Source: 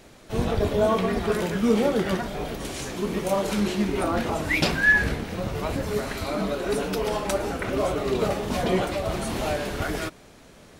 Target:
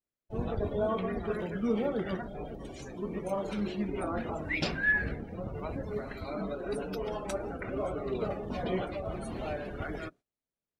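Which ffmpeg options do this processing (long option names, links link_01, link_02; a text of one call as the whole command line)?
ffmpeg -i in.wav -af "agate=range=-16dB:threshold=-43dB:ratio=16:detection=peak,adynamicequalizer=threshold=0.00891:dfrequency=930:dqfactor=3.9:tfrequency=930:tqfactor=3.9:attack=5:release=100:ratio=0.375:range=1.5:mode=cutabove:tftype=bell,afftdn=noise_reduction=23:noise_floor=-35,volume=-8.5dB" out.wav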